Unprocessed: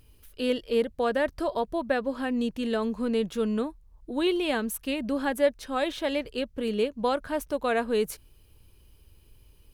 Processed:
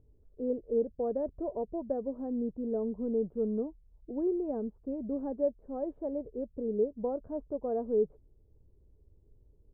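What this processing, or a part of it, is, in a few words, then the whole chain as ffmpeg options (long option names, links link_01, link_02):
under water: -af "lowpass=frequency=660:width=0.5412,lowpass=frequency=660:width=1.3066,equalizer=frequency=420:width_type=o:width=0.21:gain=5,volume=-5.5dB"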